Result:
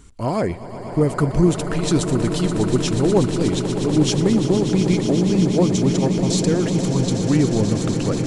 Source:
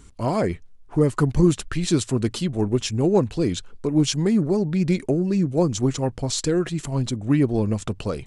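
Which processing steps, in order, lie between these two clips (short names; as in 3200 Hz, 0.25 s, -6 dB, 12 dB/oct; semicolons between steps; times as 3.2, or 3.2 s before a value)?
swelling echo 0.121 s, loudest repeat 8, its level -12.5 dB; gain +1 dB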